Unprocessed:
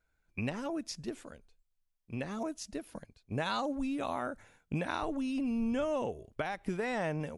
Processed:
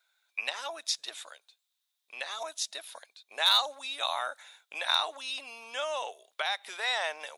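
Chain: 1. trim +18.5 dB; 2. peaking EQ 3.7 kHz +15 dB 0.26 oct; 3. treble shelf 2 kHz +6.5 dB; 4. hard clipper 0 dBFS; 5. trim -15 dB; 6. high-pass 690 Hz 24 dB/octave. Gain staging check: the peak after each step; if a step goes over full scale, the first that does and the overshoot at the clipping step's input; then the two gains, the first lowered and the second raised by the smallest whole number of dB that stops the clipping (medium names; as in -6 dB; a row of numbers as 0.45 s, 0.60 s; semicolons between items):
-1.5 dBFS, +0.5 dBFS, +5.0 dBFS, 0.0 dBFS, -15.0 dBFS, -11.5 dBFS; step 2, 5.0 dB; step 1 +13.5 dB, step 5 -10 dB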